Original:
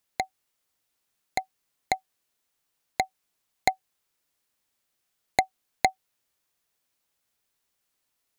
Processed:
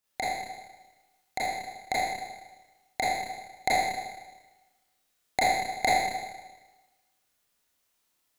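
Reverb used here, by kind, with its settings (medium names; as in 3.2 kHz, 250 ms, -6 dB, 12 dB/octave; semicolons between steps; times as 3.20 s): Schroeder reverb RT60 1.2 s, combs from 26 ms, DRR -9 dB; trim -6 dB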